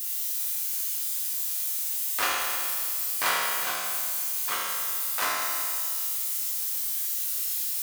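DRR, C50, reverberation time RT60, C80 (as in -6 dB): -5.5 dB, -1.5 dB, 2.1 s, 0.5 dB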